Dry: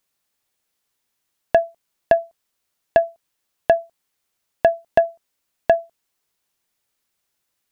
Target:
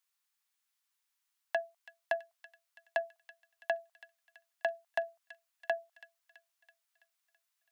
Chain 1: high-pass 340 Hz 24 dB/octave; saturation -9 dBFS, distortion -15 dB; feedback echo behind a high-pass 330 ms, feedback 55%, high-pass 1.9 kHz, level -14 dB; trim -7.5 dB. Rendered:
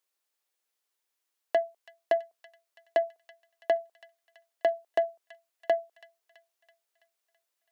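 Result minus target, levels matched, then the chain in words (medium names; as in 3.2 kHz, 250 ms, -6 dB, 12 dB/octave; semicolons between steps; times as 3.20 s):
250 Hz band +10.5 dB
high-pass 900 Hz 24 dB/octave; saturation -9 dBFS, distortion -25 dB; feedback echo behind a high-pass 330 ms, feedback 55%, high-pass 1.9 kHz, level -14 dB; trim -7.5 dB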